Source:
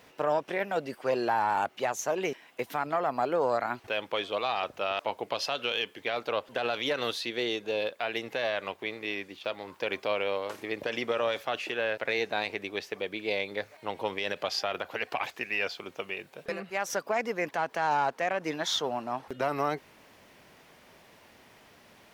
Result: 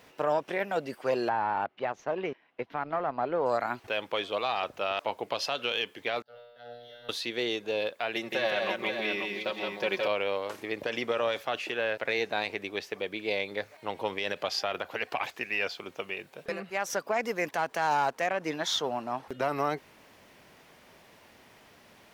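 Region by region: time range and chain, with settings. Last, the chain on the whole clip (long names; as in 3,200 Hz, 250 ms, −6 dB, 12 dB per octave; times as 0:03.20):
0:01.29–0:03.46: mu-law and A-law mismatch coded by A + high-frequency loss of the air 300 metres
0:06.22–0:07.09: mu-law and A-law mismatch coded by A + phaser with its sweep stopped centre 1,600 Hz, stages 8 + tuned comb filter 120 Hz, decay 1.2 s, mix 100%
0:08.15–0:10.08: comb filter 5.4 ms, depth 67% + multi-tap delay 168/536 ms −3.5/−6.5 dB
0:17.23–0:18.27: high-shelf EQ 5,700 Hz +10 dB + slack as between gear wheels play −56 dBFS
whole clip: no processing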